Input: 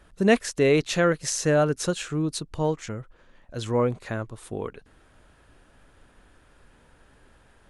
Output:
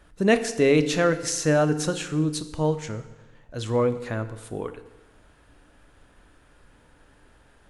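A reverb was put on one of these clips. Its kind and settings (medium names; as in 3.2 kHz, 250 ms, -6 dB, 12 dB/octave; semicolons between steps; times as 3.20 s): FDN reverb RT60 1.1 s, low-frequency decay 1.05×, high-frequency decay 0.9×, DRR 9.5 dB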